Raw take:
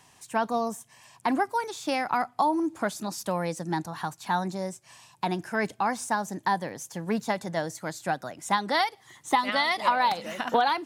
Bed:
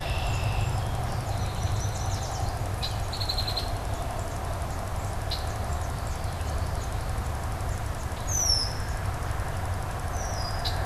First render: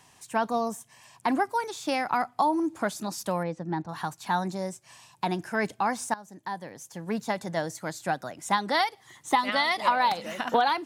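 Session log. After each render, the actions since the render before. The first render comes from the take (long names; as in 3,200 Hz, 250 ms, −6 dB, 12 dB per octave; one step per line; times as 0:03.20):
0:03.43–0:03.89: head-to-tape spacing loss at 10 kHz 28 dB
0:06.14–0:07.53: fade in, from −17.5 dB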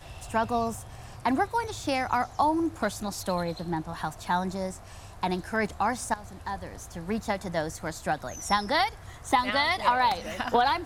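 mix in bed −15 dB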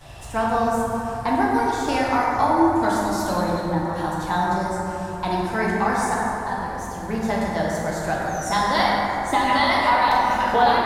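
dense smooth reverb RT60 3.5 s, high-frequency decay 0.35×, pre-delay 0 ms, DRR −5.5 dB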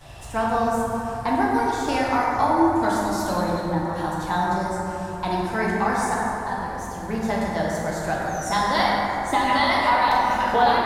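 level −1 dB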